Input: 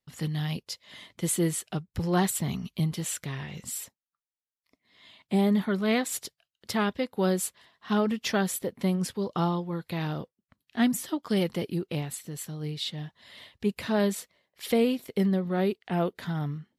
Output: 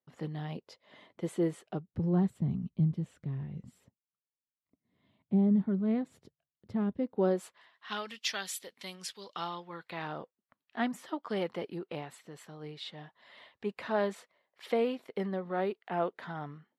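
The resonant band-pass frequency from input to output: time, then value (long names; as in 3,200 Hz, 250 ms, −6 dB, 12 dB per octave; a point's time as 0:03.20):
resonant band-pass, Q 0.81
0:01.68 530 Hz
0:02.21 140 Hz
0:06.89 140 Hz
0:07.43 790 Hz
0:08.09 3,900 Hz
0:09.17 3,900 Hz
0:10.17 940 Hz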